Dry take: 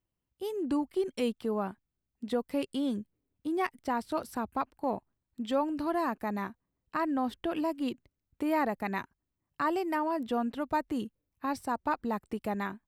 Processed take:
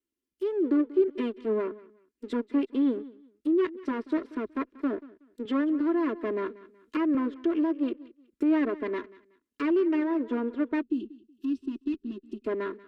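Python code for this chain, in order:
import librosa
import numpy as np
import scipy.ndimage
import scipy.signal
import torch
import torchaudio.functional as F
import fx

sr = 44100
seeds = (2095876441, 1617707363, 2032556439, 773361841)

y = fx.lower_of_two(x, sr, delay_ms=2.9)
y = fx.peak_eq(y, sr, hz=280.0, db=6.5, octaves=2.5)
y = fx.fixed_phaser(y, sr, hz=310.0, stages=4)
y = fx.env_lowpass_down(y, sr, base_hz=2200.0, full_db=-30.5)
y = fx.highpass(y, sr, hz=190.0, slope=6)
y = fx.echo_feedback(y, sr, ms=186, feedback_pct=28, wet_db=-18.0)
y = fx.spec_box(y, sr, start_s=10.81, length_s=1.64, low_hz=390.0, high_hz=2500.0, gain_db=-23)
y = fx.dynamic_eq(y, sr, hz=650.0, q=0.8, threshold_db=-44.0, ratio=4.0, max_db=7)
y = fx.band_squash(y, sr, depth_pct=40, at=(5.45, 7.15))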